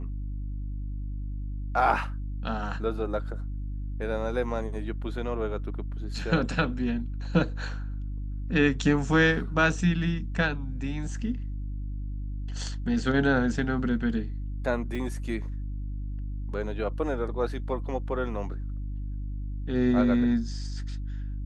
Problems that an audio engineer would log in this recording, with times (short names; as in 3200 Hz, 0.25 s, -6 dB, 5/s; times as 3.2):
hum 50 Hz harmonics 6 -33 dBFS
14.95 gap 4.2 ms